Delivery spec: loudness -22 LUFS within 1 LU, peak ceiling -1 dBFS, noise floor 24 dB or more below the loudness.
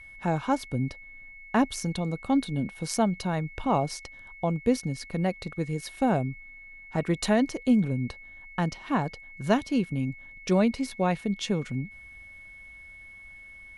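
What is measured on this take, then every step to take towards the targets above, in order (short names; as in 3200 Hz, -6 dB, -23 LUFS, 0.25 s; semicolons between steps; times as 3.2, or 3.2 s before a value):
steady tone 2200 Hz; tone level -45 dBFS; loudness -28.5 LUFS; peak -9.5 dBFS; loudness target -22.0 LUFS
-> notch 2200 Hz, Q 30; gain +6.5 dB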